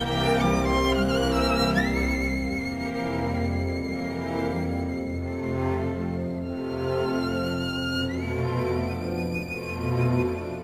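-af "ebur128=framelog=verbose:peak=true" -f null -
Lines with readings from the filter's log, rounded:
Integrated loudness:
  I:         -26.5 LUFS
  Threshold: -36.5 LUFS
Loudness range:
  LRA:         4.2 LU
  Threshold: -47.2 LUFS
  LRA low:   -28.7 LUFS
  LRA high:  -24.5 LUFS
True peak:
  Peak:      -10.1 dBFS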